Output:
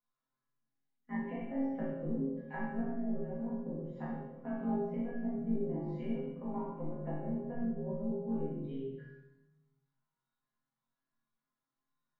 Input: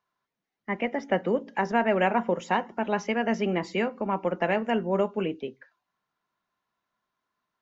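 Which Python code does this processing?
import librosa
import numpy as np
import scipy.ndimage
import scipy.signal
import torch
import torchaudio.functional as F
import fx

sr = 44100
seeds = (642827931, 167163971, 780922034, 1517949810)

y = fx.notch(x, sr, hz=2600.0, q=9.5)
y = fx.env_lowpass_down(y, sr, base_hz=360.0, full_db=-21.5)
y = fx.low_shelf(y, sr, hz=160.0, db=12.0)
y = fx.resonator_bank(y, sr, root=49, chord='minor', decay_s=0.39)
y = fx.stretch_grains(y, sr, factor=1.6, grain_ms=41.0)
y = fx.room_shoebox(y, sr, seeds[0], volume_m3=290.0, walls='mixed', distance_m=1.9)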